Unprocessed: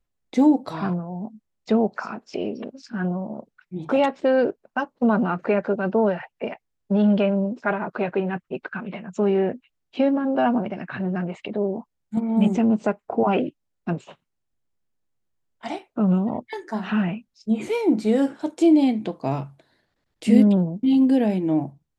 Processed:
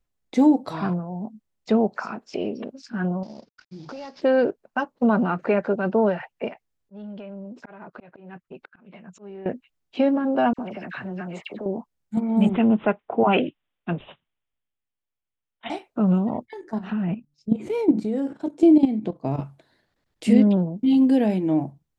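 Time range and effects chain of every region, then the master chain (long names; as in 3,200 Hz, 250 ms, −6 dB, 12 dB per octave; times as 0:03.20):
0:03.23–0:04.22: variable-slope delta modulation 32 kbit/s + parametric band 4,900 Hz +12.5 dB 0.44 octaves + downward compressor 4 to 1, threshold −37 dBFS
0:06.48–0:09.46: volume swells 723 ms + downward compressor, threshold −35 dBFS
0:10.53–0:11.66: spectral tilt +1.5 dB per octave + downward compressor 3 to 1, threshold −29 dBFS + all-pass dispersion lows, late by 55 ms, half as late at 1,800 Hz
0:12.49–0:15.70: high-shelf EQ 2,100 Hz +9 dB + bad sample-rate conversion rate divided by 6×, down none, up filtered + multiband upward and downward expander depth 40%
0:16.45–0:19.40: tilt shelving filter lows +5.5 dB, about 750 Hz + hum removal 145.6 Hz, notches 2 + output level in coarse steps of 12 dB
0:20.33–0:20.78: low-pass filter 6,300 Hz 24 dB per octave + bass and treble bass −2 dB, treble −4 dB
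whole clip: no processing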